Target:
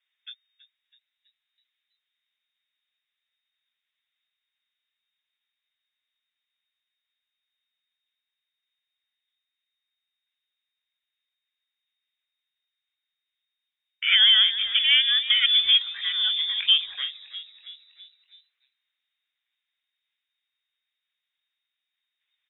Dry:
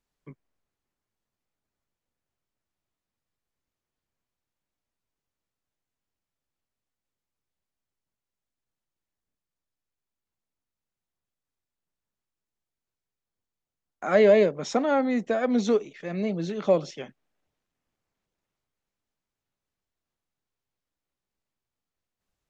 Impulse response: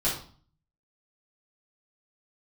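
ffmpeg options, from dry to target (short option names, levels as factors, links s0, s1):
-filter_complex "[0:a]lowpass=f=3100:t=q:w=0.5098,lowpass=f=3100:t=q:w=0.6013,lowpass=f=3100:t=q:w=0.9,lowpass=f=3100:t=q:w=2.563,afreqshift=-3700,equalizer=f=125:t=o:w=1:g=-6,equalizer=f=250:t=o:w=1:g=-11,equalizer=f=500:t=o:w=1:g=-7,equalizer=f=1000:t=o:w=1:g=-3,equalizer=f=2000:t=o:w=1:g=11,asplit=6[s0][s1][s2][s3][s4][s5];[s1]adelay=326,afreqshift=85,volume=0.158[s6];[s2]adelay=652,afreqshift=170,volume=0.0841[s7];[s3]adelay=978,afreqshift=255,volume=0.0447[s8];[s4]adelay=1304,afreqshift=340,volume=0.0237[s9];[s5]adelay=1630,afreqshift=425,volume=0.0124[s10];[s0][s6][s7][s8][s9][s10]amix=inputs=6:normalize=0,alimiter=limit=0.355:level=0:latency=1:release=133"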